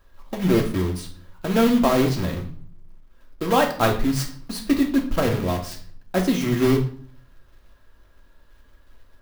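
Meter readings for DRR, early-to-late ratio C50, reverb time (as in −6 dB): 2.0 dB, 10.0 dB, 0.50 s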